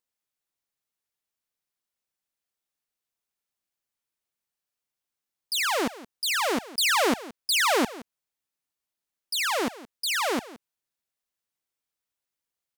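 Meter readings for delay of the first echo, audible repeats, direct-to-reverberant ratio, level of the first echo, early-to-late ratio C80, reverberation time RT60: 170 ms, 1, no reverb, -17.5 dB, no reverb, no reverb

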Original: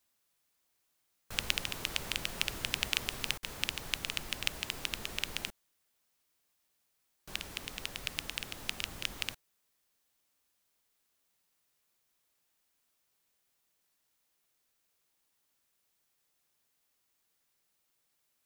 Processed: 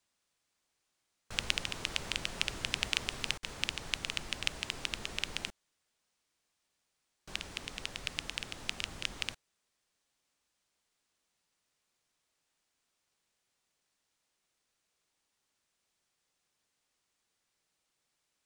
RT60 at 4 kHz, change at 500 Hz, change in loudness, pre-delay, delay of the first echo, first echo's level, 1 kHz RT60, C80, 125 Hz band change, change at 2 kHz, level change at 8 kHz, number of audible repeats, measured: no reverb, 0.0 dB, -0.5 dB, no reverb, no echo, no echo, no reverb, no reverb, 0.0 dB, 0.0 dB, -1.5 dB, no echo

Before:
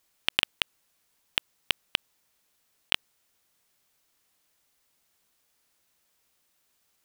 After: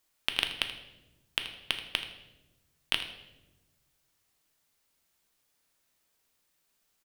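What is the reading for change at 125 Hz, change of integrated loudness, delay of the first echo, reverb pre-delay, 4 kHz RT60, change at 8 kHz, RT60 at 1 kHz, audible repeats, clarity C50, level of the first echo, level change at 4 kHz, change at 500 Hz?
-2.0 dB, -3.5 dB, 80 ms, 3 ms, 0.75 s, -3.0 dB, 0.80 s, 1, 8.5 dB, -14.5 dB, -3.0 dB, -2.5 dB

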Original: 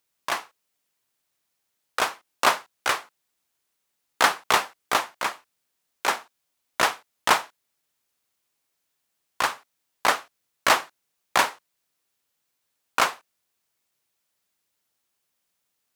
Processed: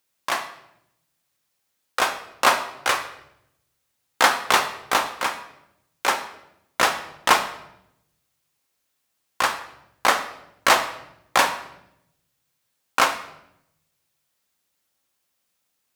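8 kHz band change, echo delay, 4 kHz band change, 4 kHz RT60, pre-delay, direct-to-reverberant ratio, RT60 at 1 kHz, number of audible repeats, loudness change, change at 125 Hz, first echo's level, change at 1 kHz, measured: +3.0 dB, no echo, +3.0 dB, 0.65 s, 4 ms, 6.0 dB, 0.75 s, no echo, +2.5 dB, +2.5 dB, no echo, +3.0 dB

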